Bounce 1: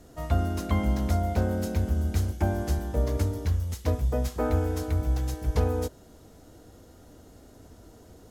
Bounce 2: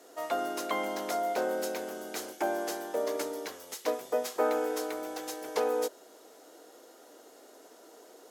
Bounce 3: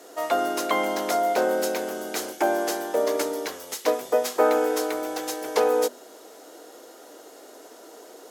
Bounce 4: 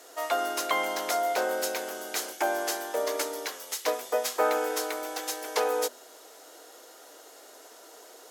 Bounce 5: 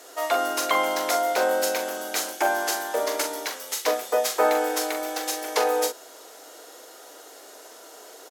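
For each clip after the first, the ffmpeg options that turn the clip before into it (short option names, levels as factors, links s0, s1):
-af "highpass=f=370:w=0.5412,highpass=f=370:w=1.3066,volume=1.33"
-af "bandreject=f=50:t=h:w=6,bandreject=f=100:t=h:w=6,bandreject=f=150:t=h:w=6,bandreject=f=200:t=h:w=6,bandreject=f=250:t=h:w=6,volume=2.51"
-af "highpass=f=950:p=1"
-filter_complex "[0:a]asplit=2[s0][s1];[s1]adelay=42,volume=0.422[s2];[s0][s2]amix=inputs=2:normalize=0,volume=1.58"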